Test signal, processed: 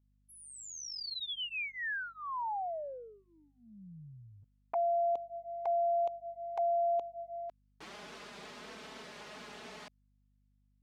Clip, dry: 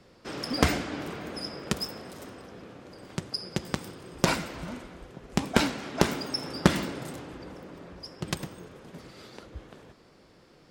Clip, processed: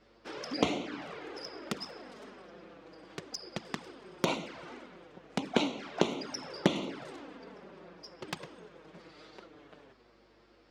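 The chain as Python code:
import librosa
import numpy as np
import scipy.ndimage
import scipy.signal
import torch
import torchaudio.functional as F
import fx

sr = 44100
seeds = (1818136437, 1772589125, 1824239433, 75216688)

y = fx.bandpass_edges(x, sr, low_hz=250.0, high_hz=4700.0)
y = fx.env_flanger(y, sr, rest_ms=10.1, full_db=-28.0)
y = fx.add_hum(y, sr, base_hz=50, snr_db=34)
y = y * 10.0 ** (-1.0 / 20.0)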